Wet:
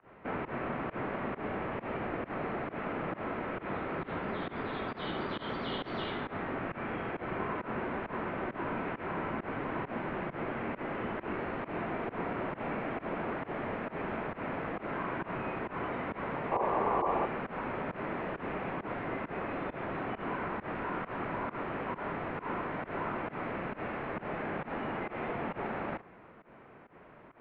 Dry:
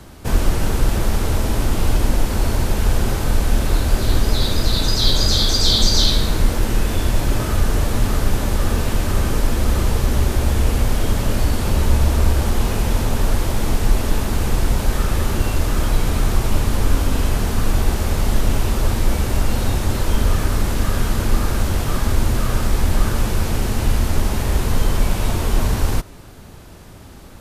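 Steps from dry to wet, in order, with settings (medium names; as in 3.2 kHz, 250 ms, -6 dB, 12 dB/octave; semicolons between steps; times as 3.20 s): volume shaper 134 bpm, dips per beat 1, -23 dB, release 113 ms; mistuned SSB -220 Hz 420–2500 Hz; painted sound noise, 16.51–17.26 s, 330–1200 Hz -25 dBFS; trim -5.5 dB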